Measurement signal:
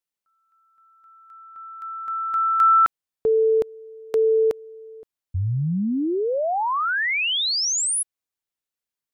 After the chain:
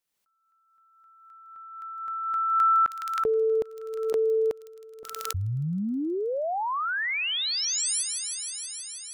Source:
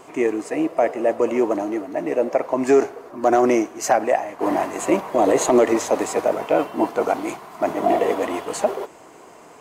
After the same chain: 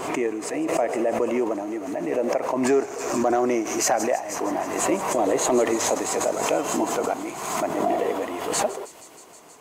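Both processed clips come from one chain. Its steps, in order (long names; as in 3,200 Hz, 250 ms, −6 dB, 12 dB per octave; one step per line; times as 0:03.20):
delay with a high-pass on its return 159 ms, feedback 84%, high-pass 4,600 Hz, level −6 dB
background raised ahead of every attack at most 43 dB per second
level −5.5 dB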